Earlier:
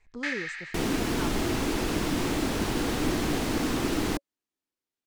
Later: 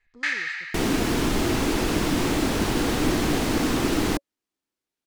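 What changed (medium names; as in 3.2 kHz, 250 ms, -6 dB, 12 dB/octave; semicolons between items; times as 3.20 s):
speech -10.0 dB; first sound +6.0 dB; second sound +4.5 dB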